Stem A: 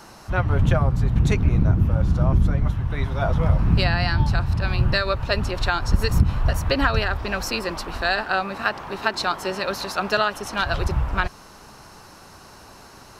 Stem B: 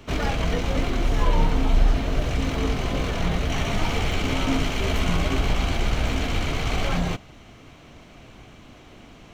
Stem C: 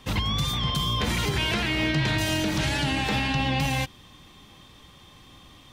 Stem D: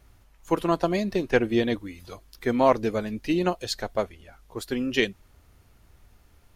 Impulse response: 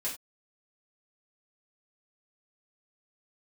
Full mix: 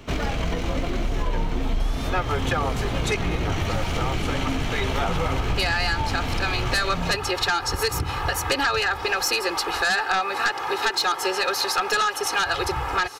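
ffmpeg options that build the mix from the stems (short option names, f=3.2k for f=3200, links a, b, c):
-filter_complex "[0:a]highpass=f=690:p=1,aecho=1:1:2.4:0.83,aeval=exprs='0.447*sin(PI/2*2.51*val(0)/0.447)':c=same,adelay=1800,volume=-2.5dB[a];[1:a]volume=2dB[b];[2:a]adelay=1550,volume=-8.5dB[c];[3:a]volume=-9dB[d];[a][b][c][d]amix=inputs=4:normalize=0,acompressor=threshold=-22dB:ratio=3"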